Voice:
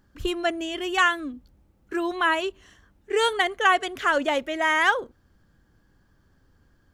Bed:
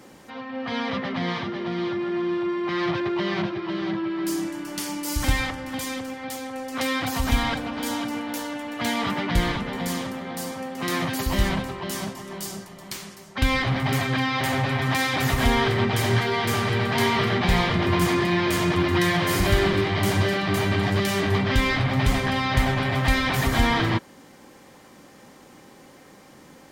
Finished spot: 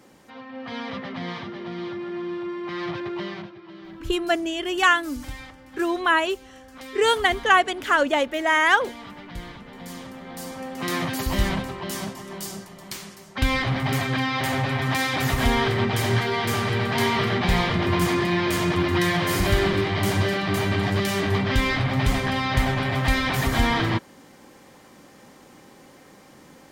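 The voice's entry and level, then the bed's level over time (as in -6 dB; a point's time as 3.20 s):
3.85 s, +2.5 dB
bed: 3.23 s -5 dB
3.53 s -14.5 dB
9.52 s -14.5 dB
10.72 s -0.5 dB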